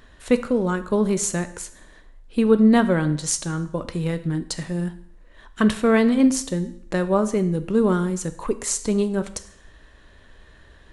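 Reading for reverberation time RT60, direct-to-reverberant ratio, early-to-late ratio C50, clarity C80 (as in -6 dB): 0.65 s, 10.5 dB, 14.5 dB, 17.0 dB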